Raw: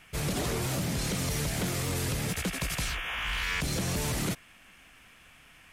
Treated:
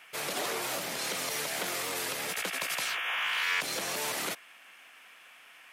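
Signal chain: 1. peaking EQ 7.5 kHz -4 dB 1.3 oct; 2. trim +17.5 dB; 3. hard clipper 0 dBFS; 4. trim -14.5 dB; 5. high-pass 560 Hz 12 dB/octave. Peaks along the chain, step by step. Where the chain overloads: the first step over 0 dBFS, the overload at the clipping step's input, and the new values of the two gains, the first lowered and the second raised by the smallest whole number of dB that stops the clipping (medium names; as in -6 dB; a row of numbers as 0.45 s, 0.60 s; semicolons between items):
-21.5 dBFS, -4.0 dBFS, -4.0 dBFS, -18.5 dBFS, -19.0 dBFS; nothing clips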